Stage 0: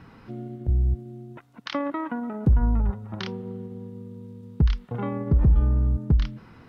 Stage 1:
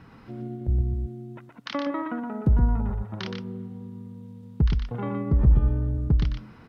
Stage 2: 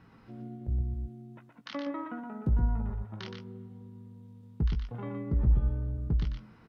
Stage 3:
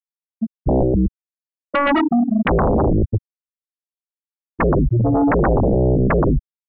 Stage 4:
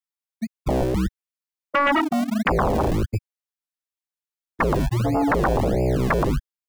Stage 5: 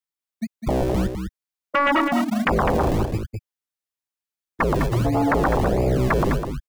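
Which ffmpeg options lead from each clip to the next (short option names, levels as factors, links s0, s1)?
-af "aecho=1:1:120:0.531,volume=0.841"
-filter_complex "[0:a]asplit=2[s0][s1];[s1]adelay=18,volume=0.398[s2];[s0][s2]amix=inputs=2:normalize=0,volume=0.376"
-filter_complex "[0:a]afftfilt=real='re*gte(hypot(re,im),0.0891)':imag='im*gte(hypot(re,im),0.0891)':win_size=1024:overlap=0.75,acrossover=split=190[s0][s1];[s0]alimiter=level_in=1.19:limit=0.0631:level=0:latency=1:release=15,volume=0.841[s2];[s2][s1]amix=inputs=2:normalize=0,aeval=exprs='0.0891*sin(PI/2*8.91*val(0)/0.0891)':c=same,volume=2.66"
-filter_complex "[0:a]acrossover=split=230|770[s0][s1][s2];[s0]acrusher=samples=36:mix=1:aa=0.000001:lfo=1:lforange=36:lforate=1.5[s3];[s2]acontrast=46[s4];[s3][s1][s4]amix=inputs=3:normalize=0,volume=0.531"
-af "aecho=1:1:205:0.447"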